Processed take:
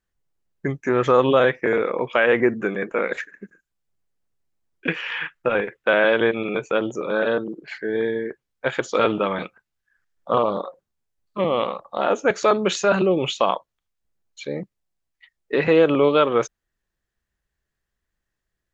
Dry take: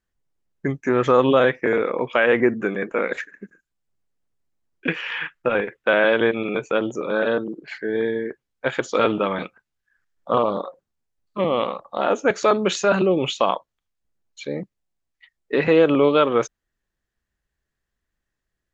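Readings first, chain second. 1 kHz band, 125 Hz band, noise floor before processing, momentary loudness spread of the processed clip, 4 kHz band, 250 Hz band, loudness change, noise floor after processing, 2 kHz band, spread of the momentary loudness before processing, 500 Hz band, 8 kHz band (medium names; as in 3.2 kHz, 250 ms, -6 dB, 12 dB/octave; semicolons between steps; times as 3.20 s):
0.0 dB, 0.0 dB, -82 dBFS, 14 LU, 0.0 dB, -1.5 dB, -0.5 dB, -82 dBFS, 0.0 dB, 14 LU, 0.0 dB, no reading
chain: peaking EQ 260 Hz -3 dB 0.38 oct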